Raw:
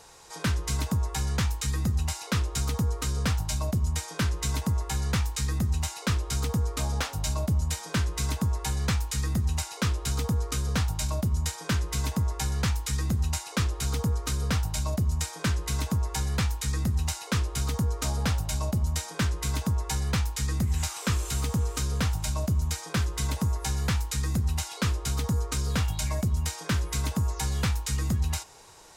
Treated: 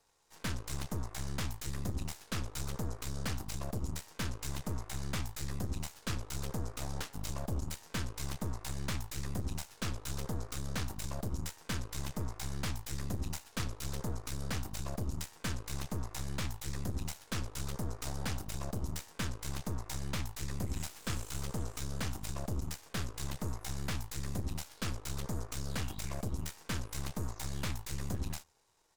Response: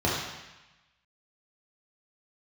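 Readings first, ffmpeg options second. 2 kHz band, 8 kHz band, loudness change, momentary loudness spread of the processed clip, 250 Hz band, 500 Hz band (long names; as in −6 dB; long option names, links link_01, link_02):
−9.0 dB, −10.0 dB, −11.0 dB, 2 LU, −9.5 dB, −7.5 dB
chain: -filter_complex "[0:a]asplit=2[link_01][link_02];[link_02]adelay=134.1,volume=-27dB,highshelf=frequency=4000:gain=-3.02[link_03];[link_01][link_03]amix=inputs=2:normalize=0,aeval=exprs='0.178*(cos(1*acos(clip(val(0)/0.178,-1,1)))-cos(1*PI/2))+0.0355*(cos(3*acos(clip(val(0)/0.178,-1,1)))-cos(3*PI/2))+0.00562*(cos(7*acos(clip(val(0)/0.178,-1,1)))-cos(7*PI/2))+0.0224*(cos(8*acos(clip(val(0)/0.178,-1,1)))-cos(8*PI/2))':channel_layout=same,volume=-7.5dB"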